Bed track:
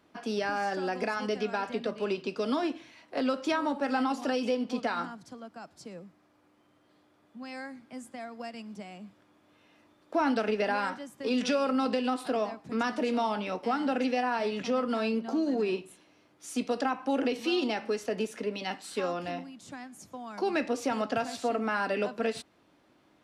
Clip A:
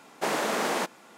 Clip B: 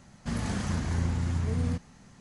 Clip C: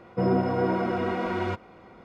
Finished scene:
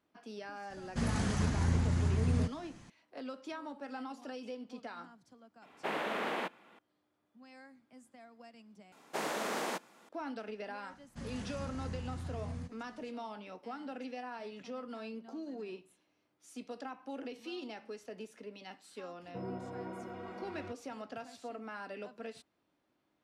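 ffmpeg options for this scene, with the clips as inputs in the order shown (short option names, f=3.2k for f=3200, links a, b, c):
-filter_complex "[2:a]asplit=2[a][b];[1:a]asplit=2[c][d];[0:a]volume=-14.5dB[e];[c]highshelf=f=4.2k:t=q:w=1.5:g=-11.5[f];[e]asplit=2[g][h];[g]atrim=end=8.924[i];[d]atrim=end=1.17,asetpts=PTS-STARTPTS,volume=-8.5dB[j];[h]atrim=start=10.086[k];[a]atrim=end=2.2,asetpts=PTS-STARTPTS,volume=-1.5dB,afade=t=in:d=0.004:c=hsin,afade=t=out:st=2.196:d=0.004:c=hsin,adelay=700[l];[f]atrim=end=1.17,asetpts=PTS-STARTPTS,volume=-8.5dB,afade=t=in:d=0.004:c=hsin,afade=t=out:st=1.166:d=0.004:c=hsin,adelay=5620[m];[b]atrim=end=2.2,asetpts=PTS-STARTPTS,volume=-13dB,afade=t=in:d=0.004:c=hsin,afade=t=out:st=2.196:d=0.004:c=hsin,adelay=480690S[n];[3:a]atrim=end=2.04,asetpts=PTS-STARTPTS,volume=-18dB,afade=t=in:d=0.004:c=hsin,afade=t=out:st=2.036:d=0.004:c=hsin,adelay=19170[o];[i][j]acrossfade=d=0.004:c1=hsin:c2=hsin[p];[p][k]acrossfade=d=0.004:c1=hsin:c2=hsin[q];[q][l][m][n][o]amix=inputs=5:normalize=0"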